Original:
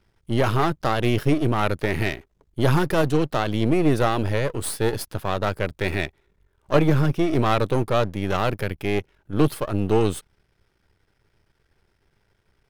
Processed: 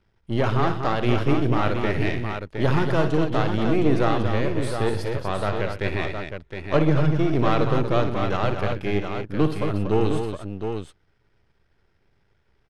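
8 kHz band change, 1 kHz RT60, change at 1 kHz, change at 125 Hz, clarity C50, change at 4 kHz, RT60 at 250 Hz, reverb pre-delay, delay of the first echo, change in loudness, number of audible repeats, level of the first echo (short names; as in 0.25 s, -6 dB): -10.0 dB, none, -0.5 dB, 0.0 dB, none, -2.0 dB, none, none, 58 ms, -1.0 dB, 4, -10.5 dB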